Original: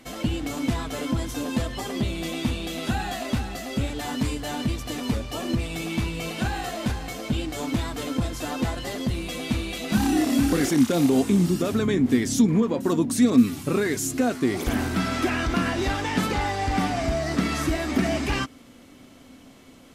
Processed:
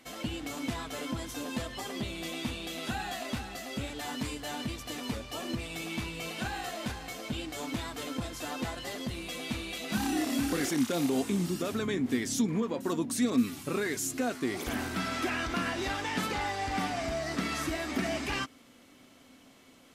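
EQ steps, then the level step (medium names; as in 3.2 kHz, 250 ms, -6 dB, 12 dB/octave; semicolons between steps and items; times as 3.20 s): tilt EQ +2 dB/octave; treble shelf 4.5 kHz -7 dB; -5.5 dB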